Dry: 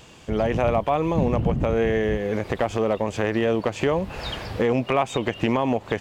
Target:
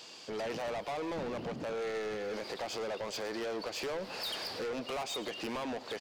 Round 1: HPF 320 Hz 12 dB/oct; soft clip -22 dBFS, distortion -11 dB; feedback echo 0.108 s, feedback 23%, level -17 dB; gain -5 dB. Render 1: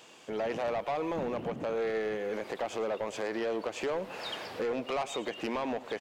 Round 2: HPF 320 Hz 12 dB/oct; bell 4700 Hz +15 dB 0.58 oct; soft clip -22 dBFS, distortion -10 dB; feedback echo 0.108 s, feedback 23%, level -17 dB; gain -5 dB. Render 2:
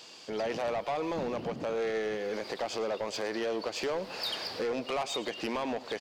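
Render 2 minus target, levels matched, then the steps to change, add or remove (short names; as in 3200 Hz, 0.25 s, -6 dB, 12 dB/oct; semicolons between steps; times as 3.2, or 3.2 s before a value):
soft clip: distortion -5 dB
change: soft clip -29 dBFS, distortion -5 dB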